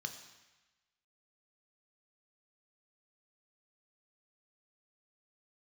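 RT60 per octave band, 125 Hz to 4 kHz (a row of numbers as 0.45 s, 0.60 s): 1.1 s, 1.0 s, 1.0 s, 1.2 s, 1.3 s, 1.2 s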